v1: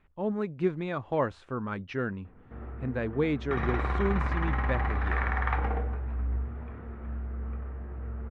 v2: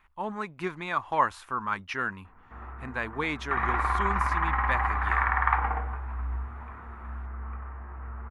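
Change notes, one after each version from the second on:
speech: remove low-pass filter 2,000 Hz 12 dB per octave
master: add graphic EQ with 10 bands 125 Hz −9 dB, 250 Hz −4 dB, 500 Hz −9 dB, 1,000 Hz +12 dB, 2,000 Hz +4 dB, 4,000 Hz −4 dB, 8,000 Hz −11 dB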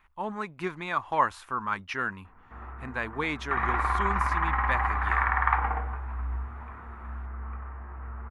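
nothing changed

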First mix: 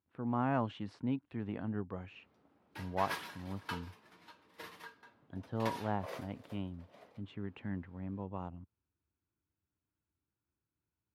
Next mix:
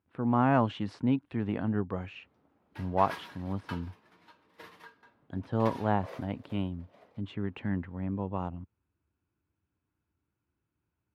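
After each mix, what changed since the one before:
speech +8.0 dB
background: add high-shelf EQ 4,100 Hz −7 dB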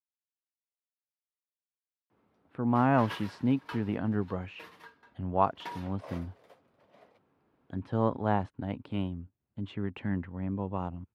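speech: entry +2.40 s

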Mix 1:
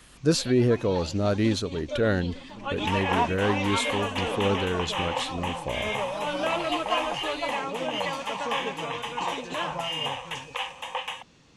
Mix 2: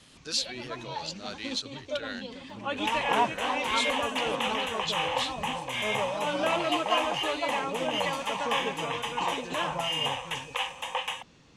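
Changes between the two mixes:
speech: add resonant band-pass 3,800 Hz, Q 1.2
first sound: add high-shelf EQ 5,200 Hz −8 dB
master: add high-shelf EQ 5,200 Hz +5 dB

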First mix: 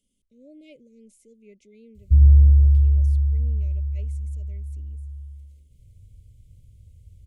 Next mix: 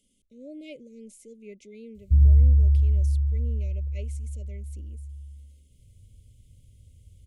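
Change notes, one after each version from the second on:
speech +7.0 dB
master: add low-shelf EQ 160 Hz −4.5 dB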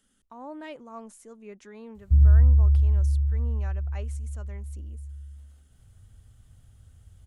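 master: remove linear-phase brick-wall band-stop 620–2,000 Hz

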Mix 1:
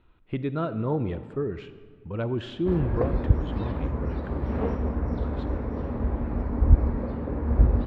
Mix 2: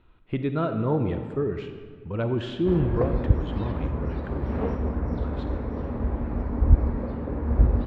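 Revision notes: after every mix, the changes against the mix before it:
speech: send +7.5 dB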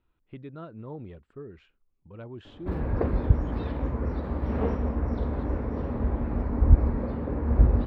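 speech −11.0 dB
reverb: off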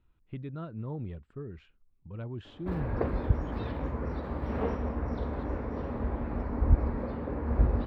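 speech: add bass and treble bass +12 dB, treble 0 dB
master: add low-shelf EQ 410 Hz −6 dB

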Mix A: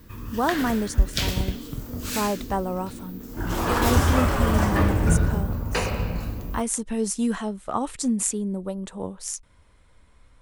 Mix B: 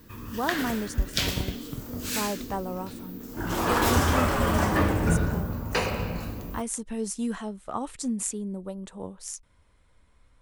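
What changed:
speech −5.5 dB
background: add low-shelf EQ 80 Hz −10.5 dB

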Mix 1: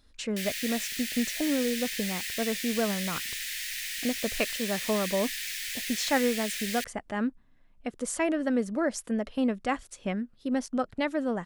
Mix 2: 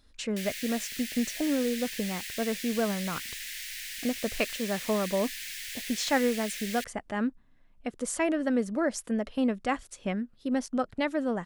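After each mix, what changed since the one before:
reverb: off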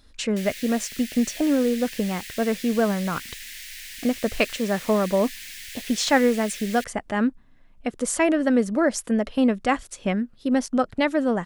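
speech +7.0 dB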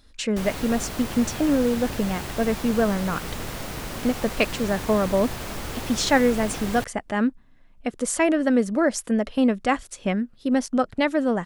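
background: remove Butterworth high-pass 1,700 Hz 72 dB per octave

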